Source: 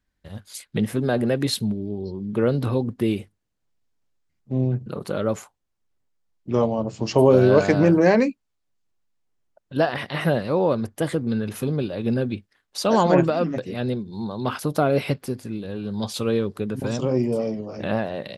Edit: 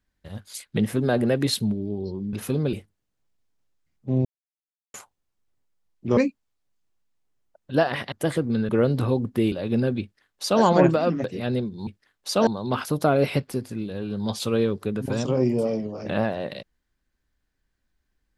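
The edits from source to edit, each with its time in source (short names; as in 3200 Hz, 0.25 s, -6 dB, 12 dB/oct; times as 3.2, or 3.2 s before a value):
2.33–3.16 swap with 11.46–11.86
4.68–5.37 mute
6.6–8.19 cut
10.14–10.89 cut
12.36–12.96 copy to 14.21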